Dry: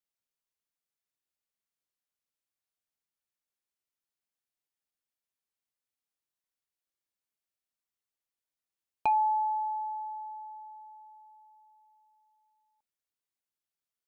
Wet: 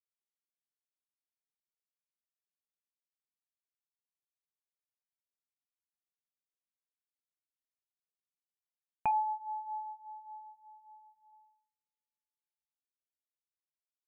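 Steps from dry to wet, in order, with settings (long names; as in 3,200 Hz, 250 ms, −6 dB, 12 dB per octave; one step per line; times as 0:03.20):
noise gate −58 dBFS, range −36 dB
Butterworth low-pass 2,500 Hz
low shelf with overshoot 250 Hz +7.5 dB, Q 1.5
0:09.11–0:11.33: flanger whose copies keep moving one way falling 1.7 Hz
level −3 dB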